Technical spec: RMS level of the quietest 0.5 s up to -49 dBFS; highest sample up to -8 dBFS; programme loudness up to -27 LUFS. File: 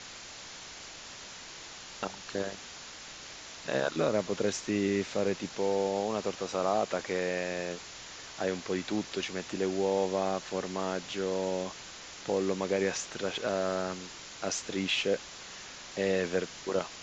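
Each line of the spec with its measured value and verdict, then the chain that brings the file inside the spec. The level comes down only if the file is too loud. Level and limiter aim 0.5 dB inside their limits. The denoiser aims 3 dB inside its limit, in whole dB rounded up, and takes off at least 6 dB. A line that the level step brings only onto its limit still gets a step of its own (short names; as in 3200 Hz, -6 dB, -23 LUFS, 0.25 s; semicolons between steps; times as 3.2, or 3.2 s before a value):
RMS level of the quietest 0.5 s -46 dBFS: fail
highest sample -15.0 dBFS: OK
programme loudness -32.5 LUFS: OK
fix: denoiser 6 dB, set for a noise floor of -46 dBFS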